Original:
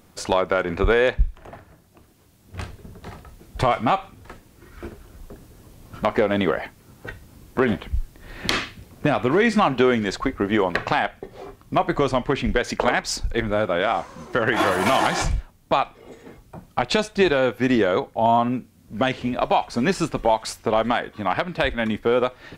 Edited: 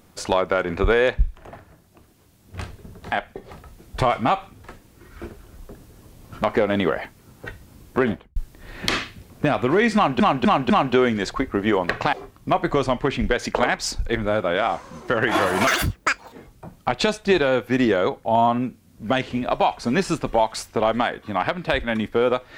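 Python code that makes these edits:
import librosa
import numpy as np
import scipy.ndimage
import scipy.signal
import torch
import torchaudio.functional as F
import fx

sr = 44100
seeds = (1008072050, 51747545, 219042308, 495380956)

y = fx.studio_fade_out(x, sr, start_s=7.61, length_s=0.36)
y = fx.edit(y, sr, fx.repeat(start_s=9.56, length_s=0.25, count=4),
    fx.move(start_s=10.99, length_s=0.39, to_s=3.12),
    fx.speed_span(start_s=14.92, length_s=1.31, speed=2.0), tone=tone)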